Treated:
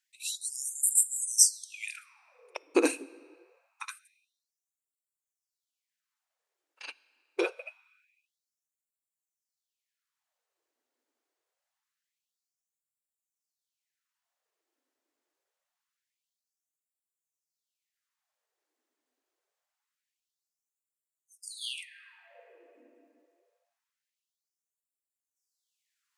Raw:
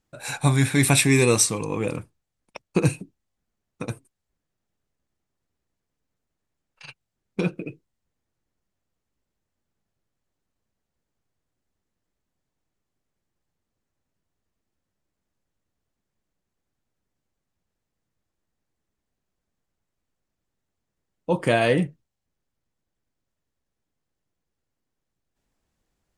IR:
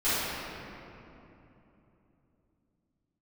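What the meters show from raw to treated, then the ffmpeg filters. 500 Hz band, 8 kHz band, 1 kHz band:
-10.5 dB, 0.0 dB, -14.0 dB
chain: -filter_complex "[0:a]asplit=2[a][b];[1:a]atrim=start_sample=2205,highshelf=f=2.4k:g=8[c];[b][c]afir=irnorm=-1:irlink=0,volume=-37dB[d];[a][d]amix=inputs=2:normalize=0,afftfilt=real='re*gte(b*sr/1024,230*pow(7100/230,0.5+0.5*sin(2*PI*0.25*pts/sr)))':imag='im*gte(b*sr/1024,230*pow(7100/230,0.5+0.5*sin(2*PI*0.25*pts/sr)))':win_size=1024:overlap=0.75"

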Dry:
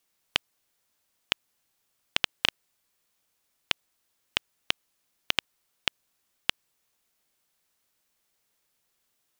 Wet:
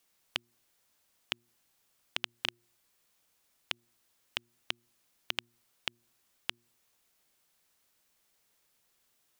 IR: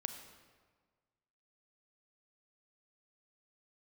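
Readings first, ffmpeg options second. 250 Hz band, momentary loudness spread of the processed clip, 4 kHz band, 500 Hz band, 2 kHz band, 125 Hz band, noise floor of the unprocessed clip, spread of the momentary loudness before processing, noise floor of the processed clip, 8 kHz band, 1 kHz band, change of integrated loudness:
-8.5 dB, 3 LU, -8.5 dB, -8.5 dB, -8.5 dB, -8.5 dB, -76 dBFS, 3 LU, -74 dBFS, -8.5 dB, -8.5 dB, -8.5 dB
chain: -af "alimiter=limit=-12dB:level=0:latency=1:release=172,bandreject=f=118:t=h:w=4,bandreject=f=236:t=h:w=4,bandreject=f=354:t=h:w=4,volume=2dB"

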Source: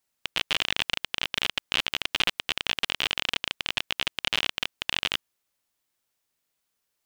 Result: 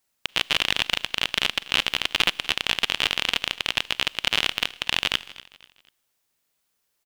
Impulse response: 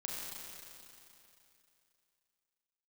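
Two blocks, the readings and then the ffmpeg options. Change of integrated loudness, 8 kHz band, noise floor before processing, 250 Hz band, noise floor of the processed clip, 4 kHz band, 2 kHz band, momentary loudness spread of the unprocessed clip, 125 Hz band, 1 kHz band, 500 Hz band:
+4.0 dB, +4.5 dB, -80 dBFS, +4.0 dB, -75 dBFS, +4.0 dB, +4.0 dB, 4 LU, +4.0 dB, +4.0 dB, +4.0 dB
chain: -filter_complex "[0:a]aecho=1:1:244|488|732:0.112|0.0426|0.0162,asplit=2[a][b];[1:a]atrim=start_sample=2205,afade=t=out:st=0.27:d=0.01,atrim=end_sample=12348,highshelf=f=7.7k:g=11.5[c];[b][c]afir=irnorm=-1:irlink=0,volume=-21.5dB[d];[a][d]amix=inputs=2:normalize=0,volume=3.5dB"

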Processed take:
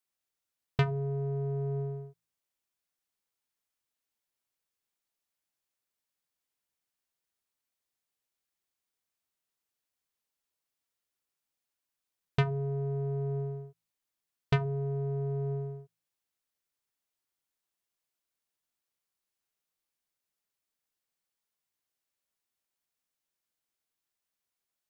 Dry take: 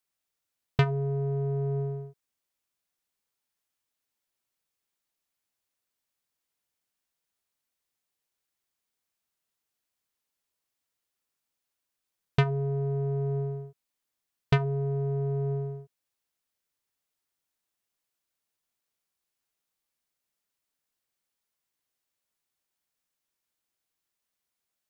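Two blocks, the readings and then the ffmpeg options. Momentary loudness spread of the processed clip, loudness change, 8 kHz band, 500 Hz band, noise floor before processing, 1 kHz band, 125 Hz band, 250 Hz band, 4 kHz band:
11 LU, -3.5 dB, n/a, -3.5 dB, -85 dBFS, -3.5 dB, -3.5 dB, -3.5 dB, -3.5 dB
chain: -af "bandreject=f=54.79:t=h:w=4,bandreject=f=109.58:t=h:w=4,bandreject=f=164.37:t=h:w=4,bandreject=f=219.16:t=h:w=4,bandreject=f=273.95:t=h:w=4,volume=-3.5dB"

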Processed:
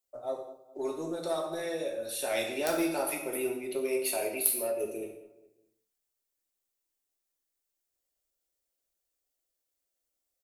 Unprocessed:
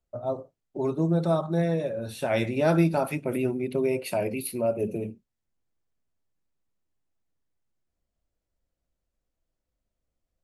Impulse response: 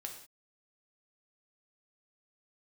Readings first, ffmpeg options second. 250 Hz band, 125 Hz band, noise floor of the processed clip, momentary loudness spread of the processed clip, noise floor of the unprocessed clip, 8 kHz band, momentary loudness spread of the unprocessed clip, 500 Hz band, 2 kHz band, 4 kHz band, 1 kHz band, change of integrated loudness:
-9.5 dB, -24.0 dB, -84 dBFS, 11 LU, -84 dBFS, +8.5 dB, 9 LU, -5.0 dB, -2.0 dB, +2.5 dB, -5.5 dB, -5.0 dB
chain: -filter_complex "[0:a]lowshelf=f=260:t=q:w=1.5:g=-8.5,asplit=2[a][b];[b]aeval=exprs='(mod(3.55*val(0)+1,2)-1)/3.55':c=same,volume=-10dB[c];[a][c]amix=inputs=2:normalize=0,asplit=2[d][e];[e]adelay=207,lowpass=f=2k:p=1,volume=-16dB,asplit=2[f][g];[g]adelay=207,lowpass=f=2k:p=1,volume=0.39,asplit=2[h][i];[i]adelay=207,lowpass=f=2k:p=1,volume=0.39[j];[d][f][h][j]amix=inputs=4:normalize=0,acrossover=split=160[k][l];[k]aeval=exprs='max(val(0),0)':c=same[m];[m][l]amix=inputs=2:normalize=0,crystalizer=i=5:c=0,aeval=exprs='1.26*(cos(1*acos(clip(val(0)/1.26,-1,1)))-cos(1*PI/2))+0.631*(cos(3*acos(clip(val(0)/1.26,-1,1)))-cos(3*PI/2))':c=same[n];[1:a]atrim=start_sample=2205[o];[n][o]afir=irnorm=-1:irlink=0,volume=-1dB"

